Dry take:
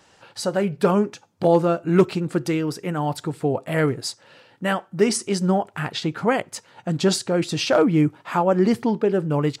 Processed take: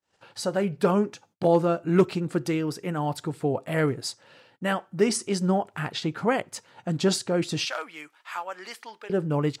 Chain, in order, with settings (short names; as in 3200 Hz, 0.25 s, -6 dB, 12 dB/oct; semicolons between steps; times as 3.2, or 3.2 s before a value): gate -53 dBFS, range -34 dB; 7.65–9.1 HPF 1400 Hz 12 dB/oct; gain -3.5 dB